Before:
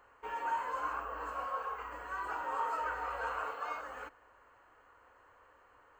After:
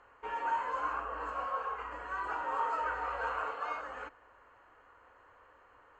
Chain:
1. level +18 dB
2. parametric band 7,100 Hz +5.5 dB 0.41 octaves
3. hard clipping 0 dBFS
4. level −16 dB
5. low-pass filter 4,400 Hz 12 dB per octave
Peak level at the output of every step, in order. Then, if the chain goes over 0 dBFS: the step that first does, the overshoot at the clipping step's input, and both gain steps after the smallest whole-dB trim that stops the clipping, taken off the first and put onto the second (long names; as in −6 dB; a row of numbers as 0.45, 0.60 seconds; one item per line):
−5.5, −5.5, −5.5, −21.5, −21.5 dBFS
no step passes full scale